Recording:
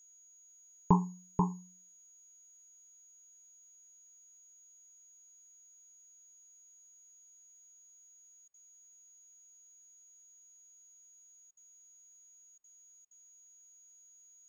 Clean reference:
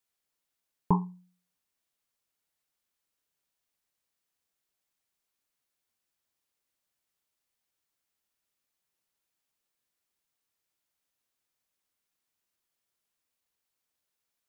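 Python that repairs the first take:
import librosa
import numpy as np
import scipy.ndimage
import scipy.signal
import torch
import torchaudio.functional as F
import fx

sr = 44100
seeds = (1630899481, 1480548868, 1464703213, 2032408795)

y = fx.notch(x, sr, hz=6700.0, q=30.0)
y = fx.fix_interpolate(y, sr, at_s=(8.48, 11.51, 12.58, 13.05), length_ms=59.0)
y = fx.fix_echo_inverse(y, sr, delay_ms=486, level_db=-4.5)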